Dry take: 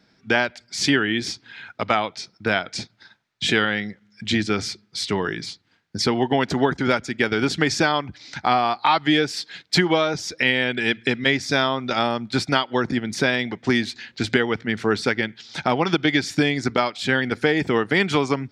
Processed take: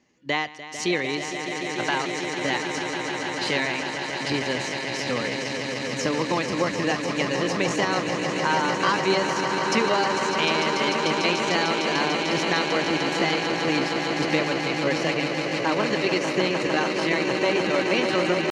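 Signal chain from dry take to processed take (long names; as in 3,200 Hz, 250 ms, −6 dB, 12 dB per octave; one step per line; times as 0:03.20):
high-frequency loss of the air 98 metres
echo that builds up and dies away 149 ms, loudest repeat 8, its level −9 dB
pitch shifter +4 semitones
level −5 dB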